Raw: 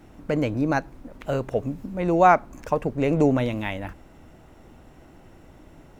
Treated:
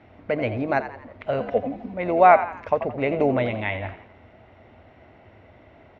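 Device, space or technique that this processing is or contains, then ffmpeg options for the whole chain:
frequency-shifting delay pedal into a guitar cabinet: -filter_complex "[0:a]asplit=5[a][b][c][d][e];[b]adelay=85,afreqshift=72,volume=-12dB[f];[c]adelay=170,afreqshift=144,volume=-19.1dB[g];[d]adelay=255,afreqshift=216,volume=-26.3dB[h];[e]adelay=340,afreqshift=288,volume=-33.4dB[i];[a][f][g][h][i]amix=inputs=5:normalize=0,highpass=78,equalizer=f=96:t=q:w=4:g=7,equalizer=f=160:t=q:w=4:g=-10,equalizer=f=310:t=q:w=4:g=-5,equalizer=f=650:t=q:w=4:g=7,equalizer=f=2.1k:t=q:w=4:g=8,lowpass=f=3.9k:w=0.5412,lowpass=f=3.9k:w=1.3066,asettb=1/sr,asplit=3[j][k][l];[j]atrim=end=1.404[m];[k]atrim=start=1.4:end=1.94,asetpts=PTS-STARTPTS,afade=t=in:d=0.004:c=qsin,afade=t=out:st=0.536:d=0.004:c=qsin,aecho=1:1:4:0.72,atrim=end_sample=23814[n];[l]atrim=start=1.936[o];[m][n]acrossfade=d=0.004:c1=hsin:c2=qsin[p];[p][o]acrossfade=d=0.004:c1=qsin:c2=hsin,volume=-1dB"

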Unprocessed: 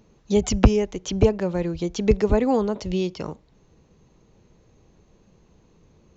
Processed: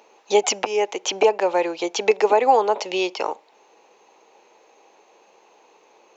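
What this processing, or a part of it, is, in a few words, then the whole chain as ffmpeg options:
laptop speaker: -af "highpass=f=410:w=0.5412,highpass=f=410:w=1.3066,equalizer=f=840:t=o:w=0.49:g=10.5,equalizer=f=2.5k:t=o:w=0.47:g=7,alimiter=limit=-13dB:level=0:latency=1:release=256,volume=7dB"

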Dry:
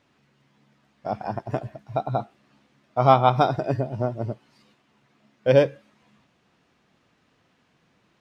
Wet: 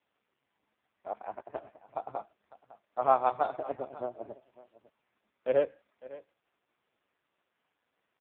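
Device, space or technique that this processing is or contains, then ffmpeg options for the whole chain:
satellite phone: -af "highpass=390,lowpass=3.4k,aecho=1:1:554:0.119,volume=-7dB" -ar 8000 -c:a libopencore_amrnb -b:a 4750

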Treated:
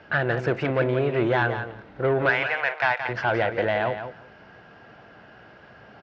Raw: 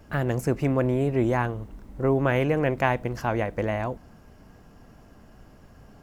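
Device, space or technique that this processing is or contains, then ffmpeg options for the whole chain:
overdrive pedal into a guitar cabinet: -filter_complex "[0:a]lowpass=7.8k,asettb=1/sr,asplit=3[a][b][c];[a]atrim=end=2.294[d];[b]atrim=start=2.29:end=3.09,asetpts=PTS-STARTPTS,afade=t=in:d=0.004:c=qsin,afade=t=out:st=0.796:d=0.004:c=qsin,highpass=f=770:w=0.5412,highpass=f=770:w=1.3066[e];[c]atrim=start=3.086[f];[d][e]acrossfade=d=0.004:c1=hsin:c2=qsin[g];[g][f]acrossfade=d=0.004:c1=qsin:c2=hsin,asplit=2[h][i];[i]highpass=f=720:p=1,volume=18dB,asoftclip=type=tanh:threshold=-9dB[j];[h][j]amix=inputs=2:normalize=0,lowpass=f=7.1k:p=1,volume=-6dB,highpass=78,equalizer=f=120:t=q:w=4:g=4,equalizer=f=260:t=q:w=4:g=-6,equalizer=f=1.1k:t=q:w=4:g=-6,equalizer=f=1.5k:t=q:w=4:g=6,lowpass=f=4k:w=0.5412,lowpass=f=4k:w=1.3066,aecho=1:1:173|346:0.355|0.0532,volume=-2.5dB"

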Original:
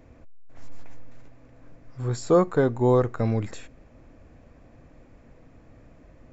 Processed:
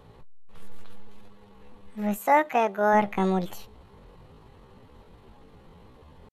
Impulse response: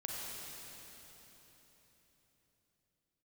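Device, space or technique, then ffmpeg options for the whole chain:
chipmunk voice: -filter_complex "[0:a]asplit=3[a][b][c];[a]afade=t=out:st=2.17:d=0.02[d];[b]highpass=f=280:p=1,afade=t=in:st=2.17:d=0.02,afade=t=out:st=2.94:d=0.02[e];[c]afade=t=in:st=2.94:d=0.02[f];[d][e][f]amix=inputs=3:normalize=0,asetrate=74167,aresample=44100,atempo=0.594604"

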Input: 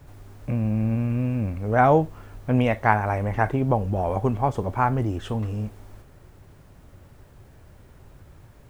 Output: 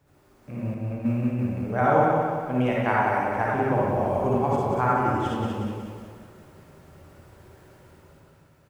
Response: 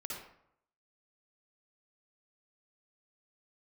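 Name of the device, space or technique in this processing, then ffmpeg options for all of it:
far laptop microphone: -filter_complex "[1:a]atrim=start_sample=2205[a];[0:a][a]afir=irnorm=-1:irlink=0,highpass=f=160:p=1,dynaudnorm=f=130:g=11:m=9dB,asettb=1/sr,asplit=3[b][c][d];[b]atrim=end=0.744[e];[c]atrim=start=0.74:end=1.39,asetpts=PTS-STARTPTS,afade=t=in:d=0.004:c=qsin,afade=t=out:st=0.646:d=0.004:c=qsin,agate=range=-7dB:threshold=-19dB:ratio=16:detection=peak[f];[d]atrim=start=1.386[g];[e][f]acrossfade=d=0.004:c1=hsin:c2=qsin[h];[h][g]acrossfade=d=0.004:c1=qsin:c2=hsin,aecho=1:1:184|368|552|736|920|1104:0.596|0.298|0.149|0.0745|0.0372|0.0186,volume=-6.5dB"

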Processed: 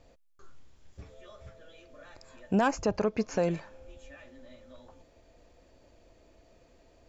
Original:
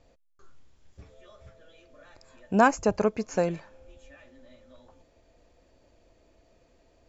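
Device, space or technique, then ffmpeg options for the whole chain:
soft clipper into limiter: -filter_complex "[0:a]asoftclip=type=tanh:threshold=-11.5dB,alimiter=limit=-19.5dB:level=0:latency=1:release=112,asettb=1/sr,asplit=3[a][b][c];[a]atrim=end=2.714[d];[b]atrim=start=2.71:end=3.43,asetpts=PTS-STARTPTS,afade=t=in:d=0.004:c=qsin,afade=t=out:st=0.716:d=0.004:c=qsin,lowpass=f=6.1k:w=0.5412,lowpass=f=6.1k:w=1.3066[e];[c]atrim=start=3.426[f];[d][e]acrossfade=d=0.004:c1=hsin:c2=qsin[g];[g][f]acrossfade=d=0.004:c1=qsin:c2=hsin,volume=2dB"

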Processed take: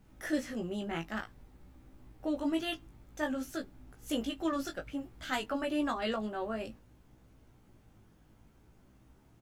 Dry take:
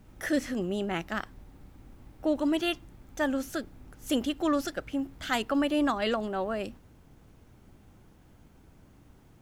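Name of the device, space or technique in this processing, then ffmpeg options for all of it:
double-tracked vocal: -filter_complex "[0:a]asplit=2[a][b];[b]adelay=19,volume=-12.5dB[c];[a][c]amix=inputs=2:normalize=0,flanger=delay=15.5:depth=2.9:speed=0.55,volume=-2.5dB"

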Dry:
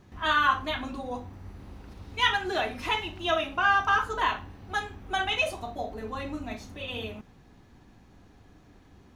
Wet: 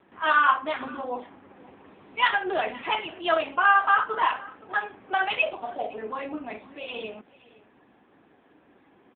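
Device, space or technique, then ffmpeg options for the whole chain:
satellite phone: -af "highpass=320,lowpass=3.1k,aecho=1:1:515:0.0841,volume=5dB" -ar 8000 -c:a libopencore_amrnb -b:a 6700

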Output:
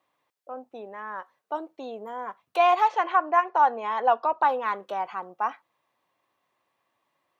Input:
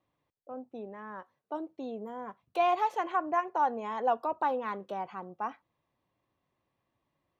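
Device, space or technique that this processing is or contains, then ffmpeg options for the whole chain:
filter by subtraction: -filter_complex "[0:a]asettb=1/sr,asplit=3[a][b][c];[a]atrim=end=2.884[d];[b]atrim=start=2.88:end=4.49,asetpts=PTS-STARTPTS,afade=t=in:d=0.004:c=qsin,afade=t=out:st=1.606:d=0.004:c=qsin,lowpass=f=5.7k:w=0.5412,lowpass=f=5.7k:w=1.3066[e];[c]atrim=start=4.486[f];[d][e]acrossfade=d=0.004:c1=hsin:c2=qsin[g];[g][f]acrossfade=d=0.004:c1=qsin:c2=hsin,asplit=2[h][i];[i]lowpass=1.1k,volume=-1[j];[h][j]amix=inputs=2:normalize=0,volume=7dB"

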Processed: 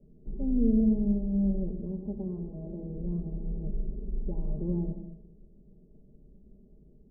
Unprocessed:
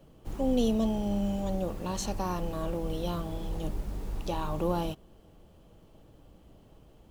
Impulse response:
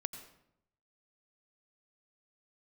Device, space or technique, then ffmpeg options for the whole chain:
next room: -filter_complex "[0:a]asettb=1/sr,asplit=3[a][b][c];[a]atrim=end=1.814[d];[b]atrim=start=1.81:end=2.96,asetpts=PTS-STARTPTS,afade=t=in:d=0.004:c=qsin,afade=t=out:st=1.146:d=0.004:c=qsin,highpass=f=130:p=1[e];[c]atrim=start=2.956[f];[d][e]acrossfade=d=0.004:c1=hsin:c2=qsin[g];[g][f]acrossfade=d=0.004:c1=qsin:c2=hsin,lowpass=f=420:w=0.5412,lowpass=f=420:w=1.3066,aecho=1:1:4.9:0.84[h];[1:a]atrim=start_sample=2205[i];[h][i]afir=irnorm=-1:irlink=0,volume=-1.5dB"

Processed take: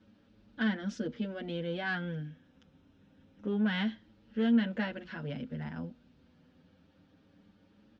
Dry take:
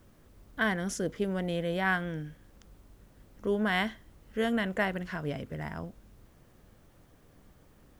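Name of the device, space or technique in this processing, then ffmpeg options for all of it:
barber-pole flanger into a guitar amplifier: -filter_complex "[0:a]asettb=1/sr,asplit=3[a][b][c];[a]atrim=end=2.274[d];[b]atrim=start=2.27:end=3.6,asetpts=PTS-STARTPTS,afade=t=in:d=0.004:c=qsin,afade=t=out:st=1.326:d=0.004:c=qsin,bandreject=f=4.5k:w=5.3[e];[c]atrim=start=3.596[f];[d][e]acrossfade=d=0.004:c1=hsin:c2=qsin[g];[g][f]acrossfade=d=0.004:c1=qsin:c2=hsin,asplit=2[h][i];[i]adelay=7,afreqshift=0.26[j];[h][j]amix=inputs=2:normalize=1,asoftclip=type=tanh:threshold=-23.5dB,highpass=110,equalizer=f=120:t=q:w=4:g=-8,equalizer=f=240:t=q:w=4:g=7,equalizer=f=390:t=q:w=4:g=-8,equalizer=f=690:t=q:w=4:g=-8,equalizer=f=1.1k:t=q:w=4:g=-10,equalizer=f=2k:t=q:w=4:g=-7,lowpass=f=4.4k:w=0.5412,lowpass=f=4.4k:w=1.3066,volume=2.5dB"

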